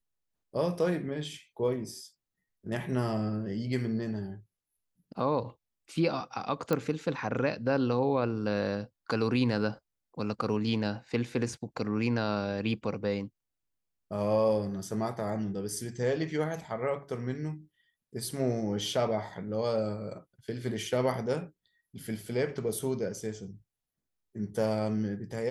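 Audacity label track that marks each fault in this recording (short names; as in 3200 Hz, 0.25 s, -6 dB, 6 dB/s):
6.730000	6.730000	pop -15 dBFS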